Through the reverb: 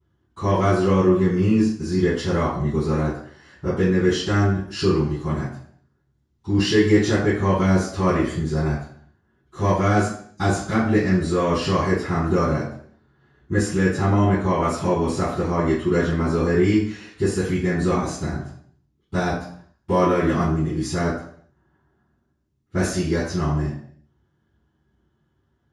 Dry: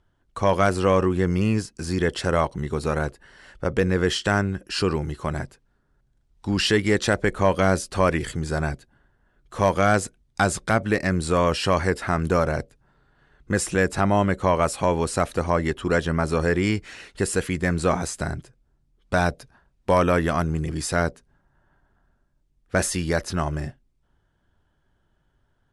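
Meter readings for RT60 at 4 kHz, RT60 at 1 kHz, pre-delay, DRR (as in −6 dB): 0.60 s, 0.55 s, 3 ms, −22.0 dB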